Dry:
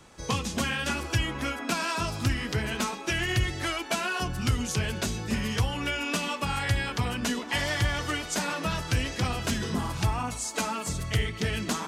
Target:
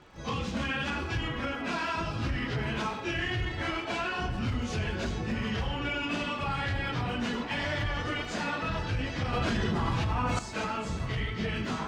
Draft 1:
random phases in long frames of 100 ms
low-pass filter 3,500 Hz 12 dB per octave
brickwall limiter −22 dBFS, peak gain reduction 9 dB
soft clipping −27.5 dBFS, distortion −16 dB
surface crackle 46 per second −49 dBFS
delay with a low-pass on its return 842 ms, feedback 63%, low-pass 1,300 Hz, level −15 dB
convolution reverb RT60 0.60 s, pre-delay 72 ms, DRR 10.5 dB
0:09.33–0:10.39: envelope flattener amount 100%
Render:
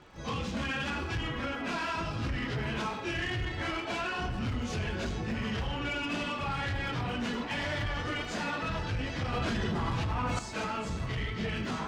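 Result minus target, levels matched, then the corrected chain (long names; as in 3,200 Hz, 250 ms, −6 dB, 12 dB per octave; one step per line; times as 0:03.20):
soft clipping: distortion +11 dB
random phases in long frames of 100 ms
low-pass filter 3,500 Hz 12 dB per octave
brickwall limiter −22 dBFS, peak gain reduction 9 dB
soft clipping −20.5 dBFS, distortion −26 dB
surface crackle 46 per second −49 dBFS
delay with a low-pass on its return 842 ms, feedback 63%, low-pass 1,300 Hz, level −15 dB
convolution reverb RT60 0.60 s, pre-delay 72 ms, DRR 10.5 dB
0:09.33–0:10.39: envelope flattener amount 100%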